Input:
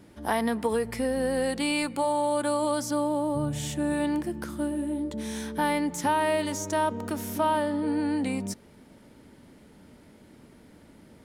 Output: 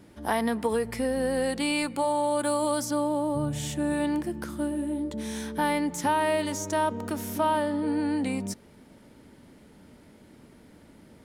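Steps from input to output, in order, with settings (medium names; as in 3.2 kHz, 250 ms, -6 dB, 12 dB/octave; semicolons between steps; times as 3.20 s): 2.39–2.85 s: treble shelf 10 kHz +8 dB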